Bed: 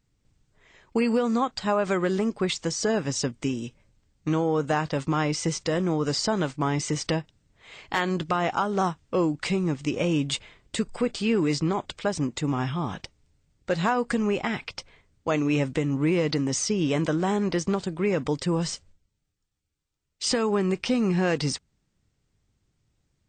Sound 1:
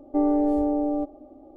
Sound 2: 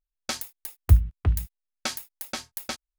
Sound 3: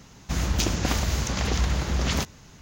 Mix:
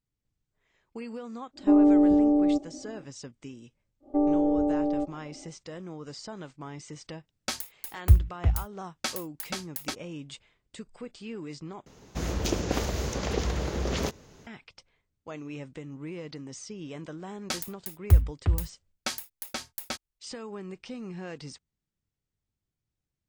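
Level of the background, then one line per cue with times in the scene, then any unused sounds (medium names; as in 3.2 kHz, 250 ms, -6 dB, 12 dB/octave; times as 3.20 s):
bed -15.5 dB
1.53 s: add 1 -5 dB, fades 0.10 s + peaking EQ 180 Hz +14.5 dB 1.8 oct
4.00 s: add 1 -2 dB, fades 0.10 s + low-pass that closes with the level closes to 1 kHz, closed at -20 dBFS
7.19 s: add 2 -1.5 dB
11.86 s: replace with 3 -6.5 dB + peaking EQ 440 Hz +11 dB 1.2 oct
17.21 s: add 2 -2 dB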